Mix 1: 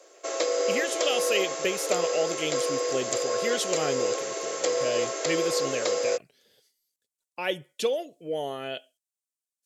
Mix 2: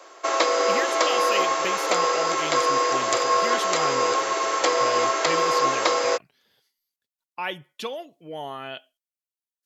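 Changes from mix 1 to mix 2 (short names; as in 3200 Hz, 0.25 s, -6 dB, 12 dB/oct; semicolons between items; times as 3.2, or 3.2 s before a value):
background +9.5 dB; master: add graphic EQ 500/1000/8000 Hz -10/+9/-10 dB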